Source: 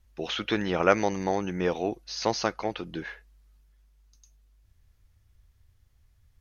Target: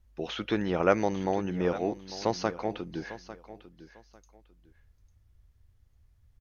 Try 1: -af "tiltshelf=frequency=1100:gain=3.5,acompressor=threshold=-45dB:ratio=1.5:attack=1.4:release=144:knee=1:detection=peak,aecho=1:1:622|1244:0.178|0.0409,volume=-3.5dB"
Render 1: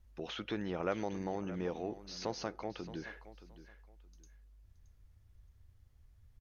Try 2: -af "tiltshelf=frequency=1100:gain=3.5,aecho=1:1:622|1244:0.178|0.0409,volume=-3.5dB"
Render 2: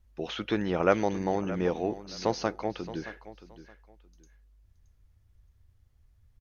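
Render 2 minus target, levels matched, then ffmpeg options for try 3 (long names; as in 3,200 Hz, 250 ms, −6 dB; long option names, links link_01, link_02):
echo 227 ms early
-af "tiltshelf=frequency=1100:gain=3.5,aecho=1:1:849|1698:0.178|0.0409,volume=-3.5dB"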